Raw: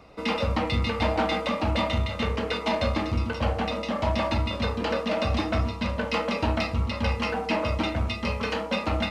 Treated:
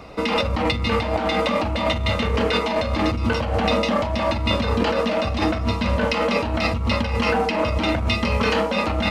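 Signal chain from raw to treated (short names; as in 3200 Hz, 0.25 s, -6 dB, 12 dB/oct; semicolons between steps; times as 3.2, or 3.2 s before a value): negative-ratio compressor -29 dBFS, ratio -1; gain +8 dB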